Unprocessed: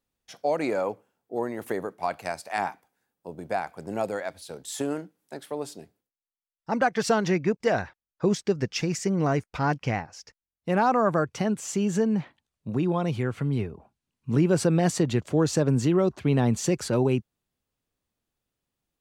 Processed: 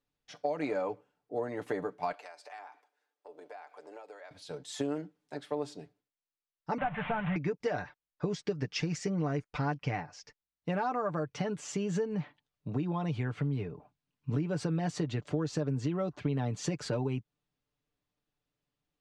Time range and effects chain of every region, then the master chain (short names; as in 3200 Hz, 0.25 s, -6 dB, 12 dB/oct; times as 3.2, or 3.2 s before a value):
2.12–4.31 HPF 380 Hz 24 dB/oct + compressor 5:1, threshold -43 dBFS
6.78–7.36 delta modulation 16 kbps, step -27.5 dBFS + EQ curve 220 Hz 0 dB, 360 Hz -21 dB, 650 Hz 0 dB, 1300 Hz -1 dB, 10000 Hz -9 dB
whole clip: LPF 5300 Hz 12 dB/oct; comb 6.8 ms, depth 61%; compressor, threshold -25 dBFS; gain -3.5 dB